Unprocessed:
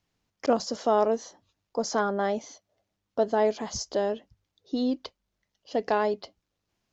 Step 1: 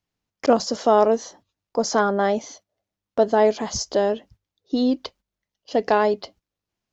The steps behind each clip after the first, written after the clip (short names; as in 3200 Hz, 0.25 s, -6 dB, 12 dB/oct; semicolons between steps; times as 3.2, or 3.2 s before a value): gate -55 dBFS, range -12 dB; gain +6.5 dB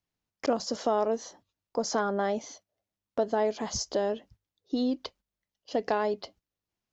compressor 2:1, threshold -21 dBFS, peak gain reduction 6 dB; gain -5 dB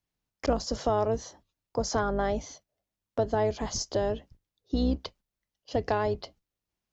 octaver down 2 oct, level -1 dB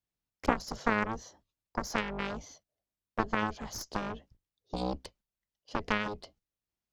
added harmonics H 2 -8 dB, 3 -7 dB, 7 -34 dB, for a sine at -13.5 dBFS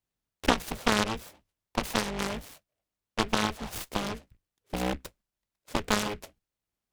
noise-modulated delay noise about 1800 Hz, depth 0.12 ms; gain +3.5 dB